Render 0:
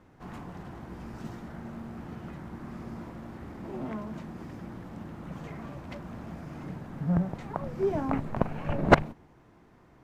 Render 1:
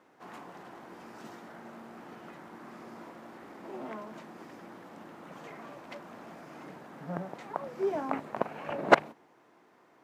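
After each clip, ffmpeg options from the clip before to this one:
-af "highpass=370"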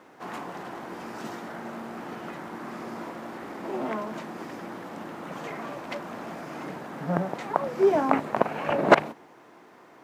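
-af "alimiter=level_in=3.55:limit=0.891:release=50:level=0:latency=1,volume=0.891"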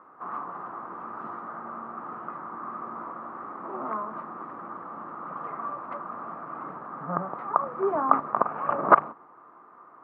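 -af "lowpass=f=1200:t=q:w=9.4,volume=0.422"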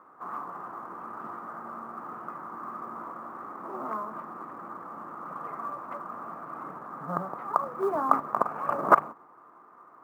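-af "acrusher=bits=9:mode=log:mix=0:aa=0.000001,volume=0.794"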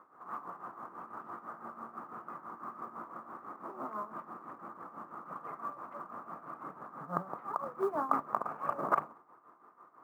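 -af "tremolo=f=6:d=0.71,volume=0.708"

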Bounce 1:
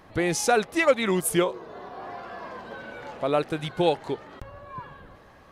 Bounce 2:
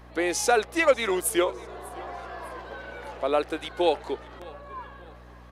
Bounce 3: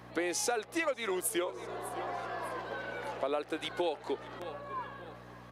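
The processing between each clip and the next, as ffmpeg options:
-af "highpass=f=300:w=0.5412,highpass=f=300:w=1.3066,aeval=exprs='val(0)+0.00398*(sin(2*PI*60*n/s)+sin(2*PI*2*60*n/s)/2+sin(2*PI*3*60*n/s)/3+sin(2*PI*4*60*n/s)/4+sin(2*PI*5*60*n/s)/5)':c=same,aecho=1:1:598|1196|1794:0.0794|0.0326|0.0134"
-af "highpass=f=89:w=0.5412,highpass=f=89:w=1.3066,acompressor=threshold=0.0316:ratio=6"

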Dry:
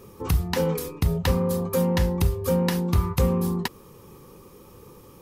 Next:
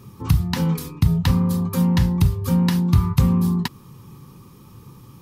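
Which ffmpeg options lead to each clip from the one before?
-af "equalizer=f=125:t=o:w=1:g=12,equalizer=f=250:t=o:w=1:g=5,equalizer=f=500:t=o:w=1:g=-11,equalizer=f=1000:t=o:w=1:g=4,equalizer=f=4000:t=o:w=1:g=4,volume=0.891"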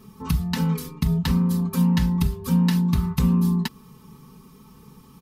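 -af "aecho=1:1:4.6:0.86,volume=0.596"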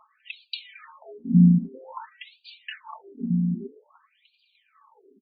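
-filter_complex "[0:a]asplit=4[s0][s1][s2][s3];[s1]adelay=299,afreqshift=35,volume=0.112[s4];[s2]adelay=598,afreqshift=70,volume=0.0347[s5];[s3]adelay=897,afreqshift=105,volume=0.0108[s6];[s0][s4][s5][s6]amix=inputs=4:normalize=0,aphaser=in_gain=1:out_gain=1:delay=2.7:decay=0.59:speed=0.69:type=triangular,afftfilt=real='re*between(b*sr/1024,220*pow(3400/220,0.5+0.5*sin(2*PI*0.51*pts/sr))/1.41,220*pow(3400/220,0.5+0.5*sin(2*PI*0.51*pts/sr))*1.41)':imag='im*between(b*sr/1024,220*pow(3400/220,0.5+0.5*sin(2*PI*0.51*pts/sr))/1.41,220*pow(3400/220,0.5+0.5*sin(2*PI*0.51*pts/sr))*1.41)':win_size=1024:overlap=0.75"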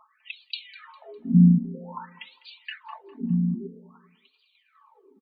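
-af "aecho=1:1:202|404|606:0.112|0.0404|0.0145"

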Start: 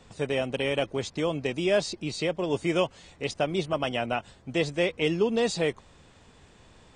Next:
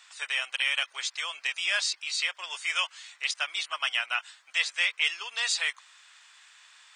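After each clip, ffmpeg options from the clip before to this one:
-af "highpass=f=1300:w=0.5412,highpass=f=1300:w=1.3066,volume=2.11"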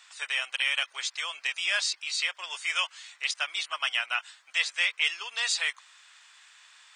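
-af anull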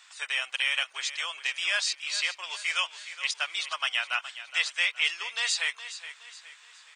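-af "aecho=1:1:418|836|1254|1672:0.224|0.0918|0.0376|0.0154"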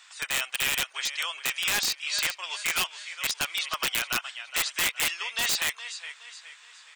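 -af "aeval=exprs='(mod(9.44*val(0)+1,2)-1)/9.44':c=same,volume=1.26"

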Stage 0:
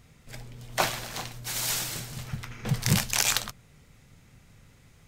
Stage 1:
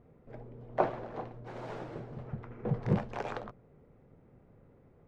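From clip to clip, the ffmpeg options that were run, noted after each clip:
-af "lowpass=1200,equalizer=f=430:w=0.68:g=14,volume=0.376"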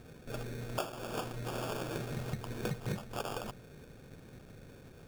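-af "acrusher=samples=22:mix=1:aa=0.000001,acompressor=threshold=0.00891:ratio=10,volume=2.37"

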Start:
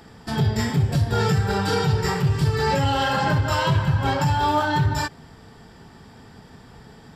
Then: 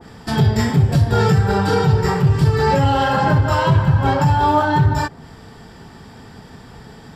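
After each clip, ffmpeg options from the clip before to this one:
-af "adynamicequalizer=threshold=0.0112:dfrequency=1700:dqfactor=0.7:tfrequency=1700:tqfactor=0.7:attack=5:release=100:ratio=0.375:range=4:mode=cutabove:tftype=highshelf,volume=2"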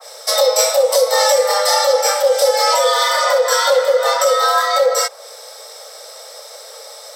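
-af "afreqshift=410,aexciter=amount=3.9:drive=8.6:freq=3600"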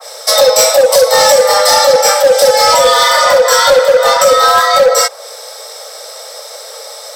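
-af "volume=2.99,asoftclip=hard,volume=0.335,volume=2.24"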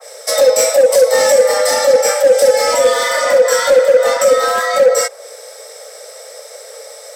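-af "equalizer=f=125:t=o:w=1:g=-7,equalizer=f=250:t=o:w=1:g=11,equalizer=f=500:t=o:w=1:g=7,equalizer=f=1000:t=o:w=1:g=-5,equalizer=f=2000:t=o:w=1:g=7,equalizer=f=4000:t=o:w=1:g=-5,equalizer=f=8000:t=o:w=1:g=6,volume=0.355"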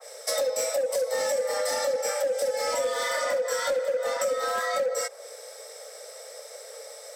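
-af "acompressor=threshold=0.178:ratio=6,volume=0.355"

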